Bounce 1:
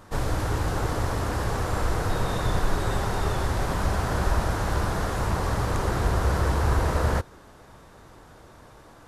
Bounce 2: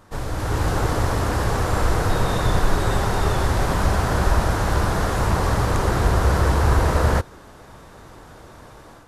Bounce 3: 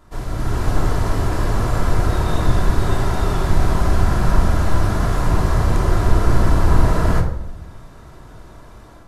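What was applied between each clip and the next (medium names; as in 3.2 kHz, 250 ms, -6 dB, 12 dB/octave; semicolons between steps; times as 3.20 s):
level rider gain up to 8 dB; trim -2 dB
octave divider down 2 oct, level +3 dB; reverberation RT60 0.75 s, pre-delay 3 ms, DRR 1.5 dB; trim -4 dB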